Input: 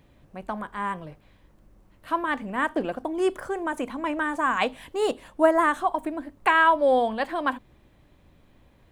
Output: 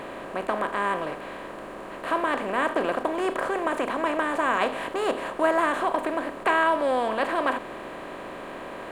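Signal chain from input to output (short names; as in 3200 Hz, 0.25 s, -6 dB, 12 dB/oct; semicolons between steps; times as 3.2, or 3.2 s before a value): per-bin compression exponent 0.4; gain -6.5 dB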